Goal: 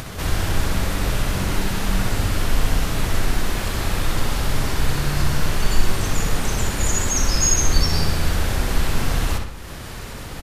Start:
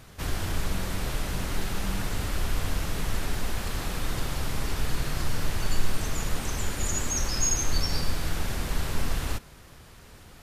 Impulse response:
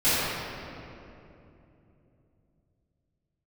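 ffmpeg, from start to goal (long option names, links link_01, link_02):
-filter_complex "[0:a]acompressor=mode=upward:threshold=-31dB:ratio=2.5,asplit=2[link_01][link_02];[link_02]adelay=63,lowpass=frequency=4800:poles=1,volume=-4dB,asplit=2[link_03][link_04];[link_04]adelay=63,lowpass=frequency=4800:poles=1,volume=0.54,asplit=2[link_05][link_06];[link_06]adelay=63,lowpass=frequency=4800:poles=1,volume=0.54,asplit=2[link_07][link_08];[link_08]adelay=63,lowpass=frequency=4800:poles=1,volume=0.54,asplit=2[link_09][link_10];[link_10]adelay=63,lowpass=frequency=4800:poles=1,volume=0.54,asplit=2[link_11][link_12];[link_12]adelay=63,lowpass=frequency=4800:poles=1,volume=0.54,asplit=2[link_13][link_14];[link_14]adelay=63,lowpass=frequency=4800:poles=1,volume=0.54[link_15];[link_01][link_03][link_05][link_07][link_09][link_11][link_13][link_15]amix=inputs=8:normalize=0,volume=6.5dB"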